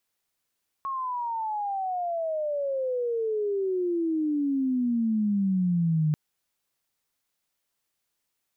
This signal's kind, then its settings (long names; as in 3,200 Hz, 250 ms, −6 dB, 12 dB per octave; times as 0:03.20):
glide logarithmic 1,100 Hz → 150 Hz −28 dBFS → −20.5 dBFS 5.29 s